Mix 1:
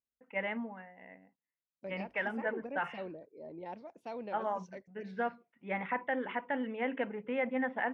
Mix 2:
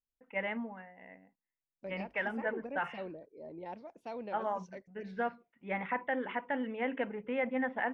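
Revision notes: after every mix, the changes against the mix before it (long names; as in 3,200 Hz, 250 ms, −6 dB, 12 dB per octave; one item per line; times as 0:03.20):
master: remove high-pass filter 68 Hz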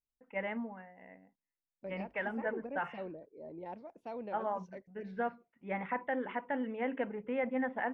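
master: add high-shelf EQ 2,500 Hz −9 dB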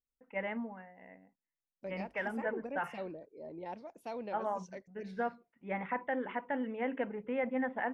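second voice: remove head-to-tape spacing loss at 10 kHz 22 dB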